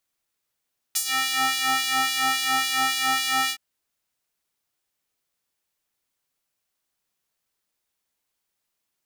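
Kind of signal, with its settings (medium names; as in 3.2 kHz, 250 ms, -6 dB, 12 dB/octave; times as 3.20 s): synth patch with filter wobble C3, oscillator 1 triangle, oscillator 2 square, interval +12 st, oscillator 2 level -2 dB, sub -30 dB, noise -27 dB, filter highpass, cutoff 1.4 kHz, Q 1.1, filter decay 0.29 s, filter sustain 15%, attack 14 ms, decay 0.08 s, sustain -10 dB, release 0.07 s, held 2.55 s, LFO 3.6 Hz, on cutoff 0.8 oct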